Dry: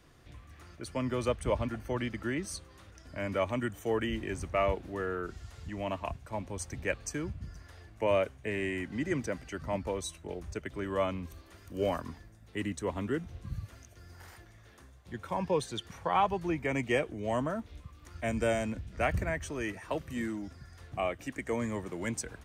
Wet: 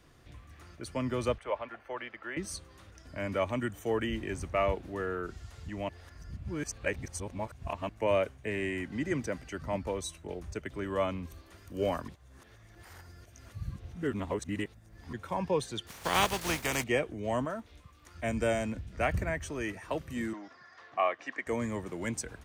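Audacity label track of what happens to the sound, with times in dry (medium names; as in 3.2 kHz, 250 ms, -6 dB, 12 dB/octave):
1.380000	2.370000	three-band isolator lows -23 dB, under 460 Hz, highs -19 dB, over 3.2 kHz
5.890000	7.890000	reverse
12.080000	15.130000	reverse
15.870000	16.820000	spectral contrast reduction exponent 0.41
17.450000	18.170000	bass shelf 310 Hz -8 dB
20.330000	21.470000	cabinet simulation 410–5500 Hz, peaks and dips at 710 Hz +4 dB, 1.1 kHz +10 dB, 1.8 kHz +7 dB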